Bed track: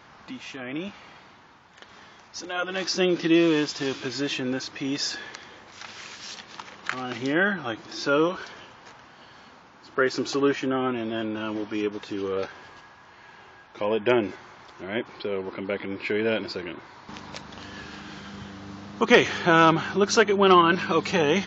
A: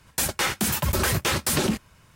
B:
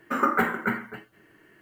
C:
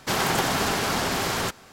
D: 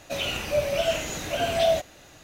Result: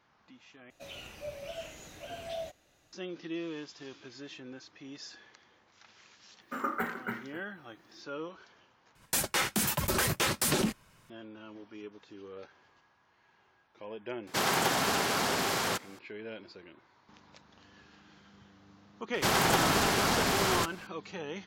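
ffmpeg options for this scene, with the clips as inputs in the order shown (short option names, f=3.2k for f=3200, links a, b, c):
-filter_complex "[3:a]asplit=2[a][b];[0:a]volume=-18dB[c];[2:a]highshelf=f=6.2k:g=4.5[d];[1:a]equalizer=f=71:w=1.5:g=-10.5[e];[a]highpass=f=180:p=1[f];[c]asplit=3[g][h][i];[g]atrim=end=0.704[j];[4:a]atrim=end=2.23,asetpts=PTS-STARTPTS,volume=-17dB[k];[h]atrim=start=2.926:end=8.954[l];[e]atrim=end=2.15,asetpts=PTS-STARTPTS,volume=-4.5dB[m];[i]atrim=start=11.096[n];[d]atrim=end=1.61,asetpts=PTS-STARTPTS,volume=-10.5dB,afade=t=in:d=0.004:c=hsin,afade=t=out:st=1.606:d=0.004:c=hsin,adelay=6410[o];[f]atrim=end=1.72,asetpts=PTS-STARTPTS,volume=-4dB,afade=t=in:d=0.004:c=hsin,afade=t=out:st=1.716:d=0.004:c=hsin,adelay=14270[p];[b]atrim=end=1.72,asetpts=PTS-STARTPTS,volume=-2.5dB,afade=t=in:d=0.004:c=hsin,afade=t=out:st=1.716:d=0.004:c=hsin,adelay=19150[q];[j][k]acrossfade=d=0.004:c1=hsin:c2=hsin[r];[r][l]acrossfade=d=0.004:c1=hsin:c2=hsin[s];[s][m]acrossfade=d=0.004:c1=hsin:c2=hsin[t];[t][n]acrossfade=d=0.004:c1=hsin:c2=hsin[u];[u][o][p][q]amix=inputs=4:normalize=0"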